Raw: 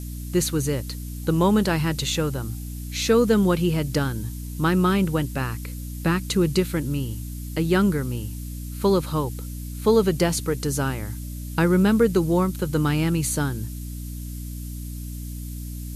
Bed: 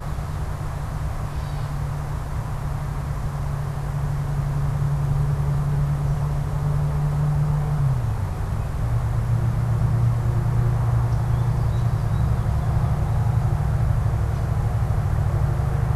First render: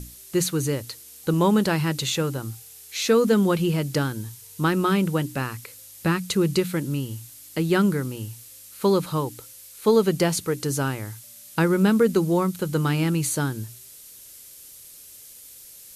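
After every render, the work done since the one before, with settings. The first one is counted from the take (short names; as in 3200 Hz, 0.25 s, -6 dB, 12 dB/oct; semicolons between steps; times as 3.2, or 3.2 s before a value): notches 60/120/180/240/300 Hz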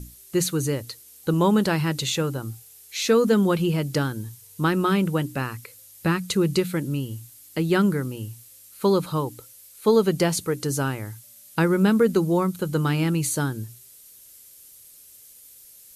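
denoiser 6 dB, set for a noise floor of -46 dBFS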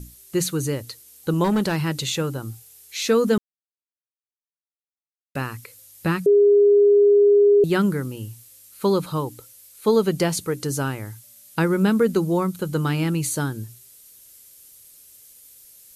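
1.44–1.87 hard clip -16.5 dBFS; 3.38–5.35 mute; 6.26–7.64 bleep 408 Hz -11 dBFS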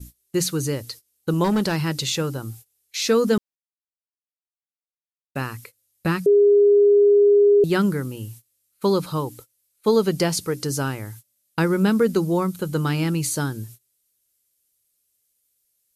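gate -41 dBFS, range -22 dB; dynamic EQ 5100 Hz, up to +6 dB, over -51 dBFS, Q 3.3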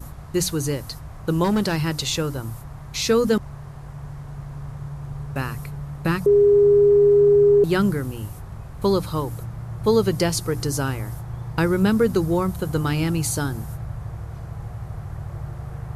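add bed -11 dB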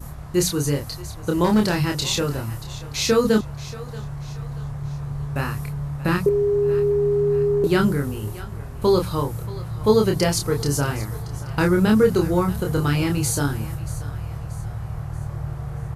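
doubler 28 ms -3.5 dB; thinning echo 0.631 s, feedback 45%, high-pass 530 Hz, level -16 dB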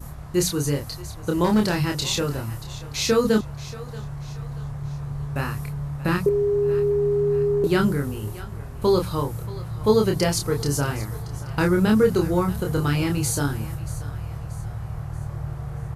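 gain -1.5 dB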